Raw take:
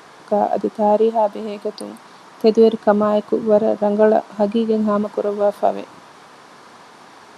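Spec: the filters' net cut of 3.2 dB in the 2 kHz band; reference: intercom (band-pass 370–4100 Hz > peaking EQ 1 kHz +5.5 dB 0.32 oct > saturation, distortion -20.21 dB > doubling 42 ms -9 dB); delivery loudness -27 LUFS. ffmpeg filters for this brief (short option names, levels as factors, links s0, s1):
-filter_complex "[0:a]highpass=370,lowpass=4100,equalizer=f=1000:t=o:w=0.32:g=5.5,equalizer=f=2000:t=o:g=-5.5,asoftclip=threshold=0.501,asplit=2[s0][s1];[s1]adelay=42,volume=0.355[s2];[s0][s2]amix=inputs=2:normalize=0,volume=0.447"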